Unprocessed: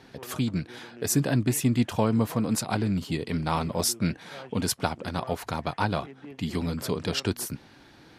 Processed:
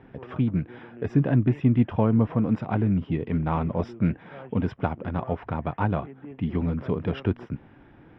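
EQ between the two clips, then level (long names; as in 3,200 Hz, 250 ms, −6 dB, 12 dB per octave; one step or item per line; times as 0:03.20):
Savitzky-Golay smoothing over 25 samples
high-frequency loss of the air 230 metres
spectral tilt −1.5 dB per octave
0.0 dB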